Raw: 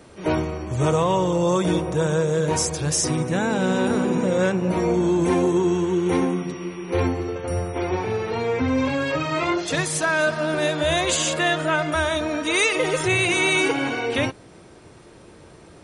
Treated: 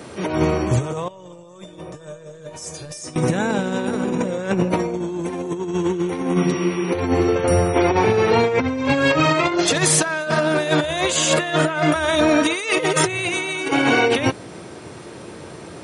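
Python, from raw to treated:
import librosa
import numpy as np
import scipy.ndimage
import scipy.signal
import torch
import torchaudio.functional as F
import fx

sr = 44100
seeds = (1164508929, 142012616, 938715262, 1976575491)

y = scipy.signal.sosfilt(scipy.signal.butter(2, 100.0, 'highpass', fs=sr, output='sos'), x)
y = fx.over_compress(y, sr, threshold_db=-25.0, ratio=-0.5)
y = fx.comb_fb(y, sr, f0_hz=600.0, decay_s=0.25, harmonics='all', damping=0.0, mix_pct=90, at=(1.08, 3.16))
y = F.gain(torch.from_numpy(y), 6.5).numpy()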